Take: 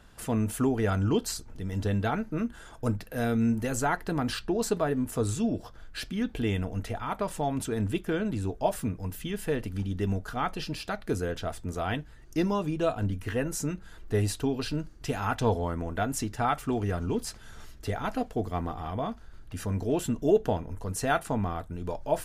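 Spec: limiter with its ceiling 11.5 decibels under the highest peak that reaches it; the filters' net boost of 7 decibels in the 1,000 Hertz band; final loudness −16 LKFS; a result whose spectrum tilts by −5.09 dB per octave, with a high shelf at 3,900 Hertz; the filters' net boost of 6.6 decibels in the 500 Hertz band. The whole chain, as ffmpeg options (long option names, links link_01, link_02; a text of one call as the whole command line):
ffmpeg -i in.wav -af "equalizer=frequency=500:width_type=o:gain=6.5,equalizer=frequency=1000:width_type=o:gain=6.5,highshelf=frequency=3900:gain=7,volume=12.5dB,alimiter=limit=-4dB:level=0:latency=1" out.wav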